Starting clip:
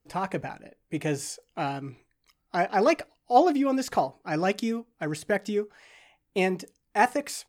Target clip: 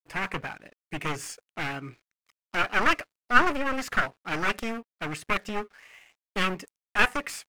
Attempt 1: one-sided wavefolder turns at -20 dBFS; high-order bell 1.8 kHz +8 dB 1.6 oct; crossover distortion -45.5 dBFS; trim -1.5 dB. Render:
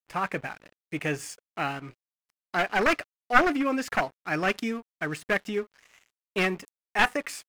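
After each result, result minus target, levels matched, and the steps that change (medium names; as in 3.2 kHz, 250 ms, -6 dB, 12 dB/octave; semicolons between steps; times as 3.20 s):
one-sided wavefolder: distortion -13 dB; crossover distortion: distortion +8 dB
change: one-sided wavefolder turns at -31 dBFS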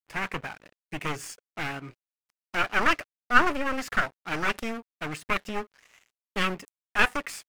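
crossover distortion: distortion +8 dB
change: crossover distortion -54.5 dBFS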